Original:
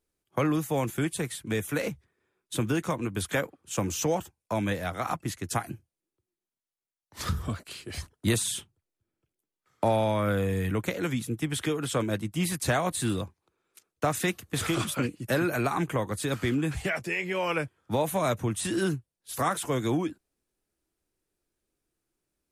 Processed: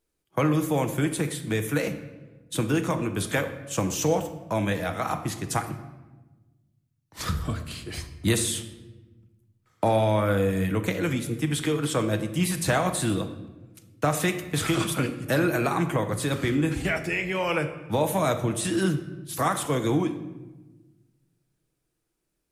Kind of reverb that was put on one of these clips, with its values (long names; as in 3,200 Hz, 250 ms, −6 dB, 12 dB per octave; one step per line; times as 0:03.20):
rectangular room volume 670 cubic metres, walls mixed, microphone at 0.61 metres
level +2 dB